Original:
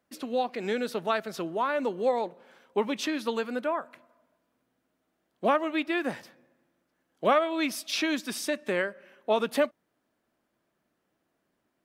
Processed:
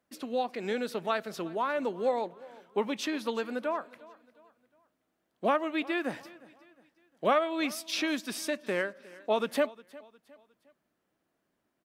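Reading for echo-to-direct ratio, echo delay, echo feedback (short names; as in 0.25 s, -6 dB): -20.5 dB, 0.358 s, 40%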